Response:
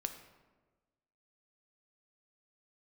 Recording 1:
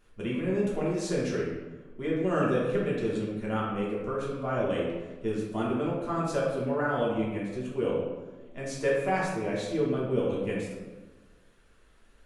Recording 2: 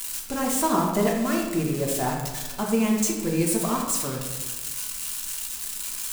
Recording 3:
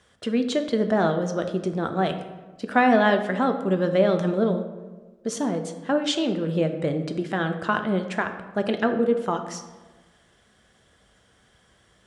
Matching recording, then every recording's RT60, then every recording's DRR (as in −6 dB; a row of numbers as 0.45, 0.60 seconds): 3; 1.3, 1.3, 1.3 seconds; −6.0, −1.5, 6.5 decibels